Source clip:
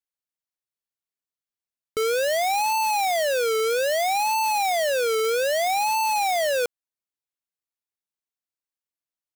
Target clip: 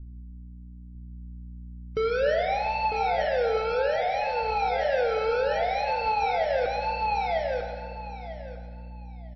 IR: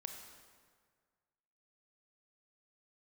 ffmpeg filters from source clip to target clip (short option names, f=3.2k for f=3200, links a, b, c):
-filter_complex "[0:a]highpass=f=100:p=1,acrusher=bits=5:mix=0:aa=0.000001,asettb=1/sr,asplit=3[a][b][c];[a]atrim=end=5.714[d];[b]atrim=start=5.71:end=6.43,asetpts=PTS-STARTPTS,afade=t=in:d=0.004:c=qsin,afade=t=out:st=0.716:d=0.004:c=qsin,acontrast=26[e];[c]atrim=start=6.426[f];[d][e]acrossfade=d=0.004:c1=hsin:c2=qsin[g];[g][f]acrossfade=d=0.004:c1=qsin:c2=hsin,aphaser=in_gain=1:out_gain=1:delay=2:decay=0.37:speed=1.3:type=sinusoidal,aeval=exprs='val(0)+0.00355*(sin(2*PI*60*n/s)+sin(2*PI*2*60*n/s)/2+sin(2*PI*3*60*n/s)/3+sin(2*PI*4*60*n/s)/4+sin(2*PI*5*60*n/s)/5)':c=same,asplit=3[h][i][j];[h]afade=t=out:st=2.28:d=0.02[k];[i]equalizer=f=510:w=2.9:g=-3,afade=t=in:st=2.28:d=0.02,afade=t=out:st=2.77:d=0.02[l];[j]afade=t=in:st=2.77:d=0.02[m];[k][l][m]amix=inputs=3:normalize=0,asplit=3[n][o][p];[n]afade=t=out:st=3.72:d=0.02[q];[o]bandreject=f=60:t=h:w=6,bandreject=f=120:t=h:w=6,bandreject=f=180:t=h:w=6,bandreject=f=240:t=h:w=6,bandreject=f=300:t=h:w=6,bandreject=f=360:t=h:w=6,bandreject=f=420:t=h:w=6,afade=t=in:st=3.72:d=0.02,afade=t=out:st=4.41:d=0.02[r];[p]afade=t=in:st=4.41:d=0.02[s];[q][r][s]amix=inputs=3:normalize=0,aecho=1:1:949|1898|2847:0.447|0.0938|0.0197,alimiter=limit=-17dB:level=0:latency=1:release=184,aemphasis=mode=reproduction:type=riaa[t];[1:a]atrim=start_sample=2205[u];[t][u]afir=irnorm=-1:irlink=0" -ar 16000 -c:a libmp3lame -b:a 24k